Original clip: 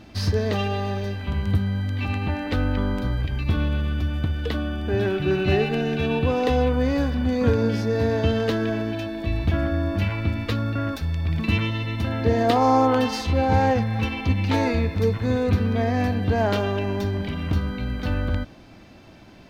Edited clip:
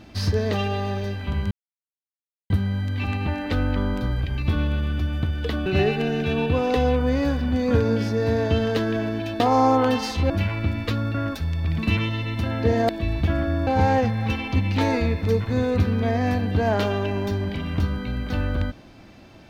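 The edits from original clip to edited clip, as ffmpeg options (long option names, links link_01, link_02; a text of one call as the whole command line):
ffmpeg -i in.wav -filter_complex "[0:a]asplit=7[link_01][link_02][link_03][link_04][link_05][link_06][link_07];[link_01]atrim=end=1.51,asetpts=PTS-STARTPTS,afade=type=out:start_time=1.506:duration=0.004:curve=hsin,apad=pad_dur=0.99[link_08];[link_02]atrim=start=1.51:end=4.672,asetpts=PTS-STARTPTS,afade=type=in:duration=0.004:curve=hsin[link_09];[link_03]atrim=start=5.388:end=9.132[link_10];[link_04]atrim=start=12.498:end=13.402[link_11];[link_05]atrim=start=9.908:end=12.502[link_12];[link_06]atrim=start=9.128:end=9.912[link_13];[link_07]atrim=start=13.398[link_14];[link_08][link_09]concat=n=2:v=0:a=1[link_15];[link_15][link_10]acrossfade=duration=0.004:curve1=hsin:curve2=hsin[link_16];[link_16][link_11]acrossfade=duration=0.004:curve1=hsin:curve2=hsin[link_17];[link_17][link_12]acrossfade=duration=0.004:curve1=hsin:curve2=hsin[link_18];[link_18][link_13]acrossfade=duration=0.004:curve1=hsin:curve2=hsin[link_19];[link_19][link_14]acrossfade=duration=0.004:curve1=hsin:curve2=hsin" out.wav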